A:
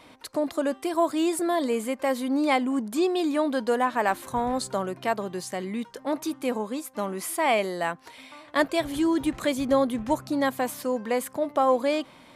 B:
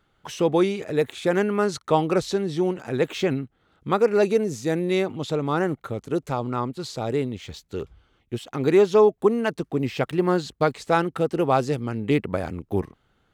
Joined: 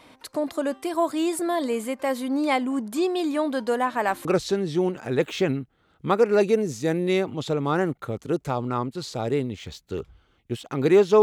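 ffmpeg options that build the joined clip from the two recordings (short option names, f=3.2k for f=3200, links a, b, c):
-filter_complex "[0:a]apad=whole_dur=11.22,atrim=end=11.22,atrim=end=4.252[a];[1:a]atrim=start=2.068:end=9.04[b];[a][b]acrossfade=d=0.004:c1=hsin:c2=hsin"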